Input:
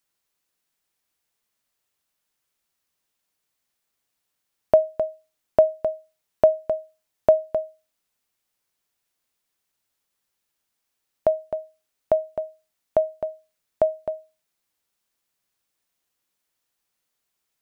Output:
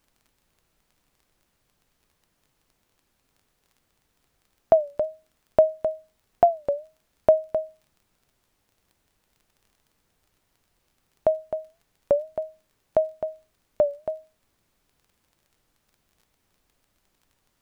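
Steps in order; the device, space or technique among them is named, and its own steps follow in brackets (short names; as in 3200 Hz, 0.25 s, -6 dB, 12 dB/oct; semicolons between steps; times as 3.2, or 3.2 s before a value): warped LP (record warp 33 1/3 rpm, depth 160 cents; crackle 20/s; pink noise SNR 42 dB); gain -1 dB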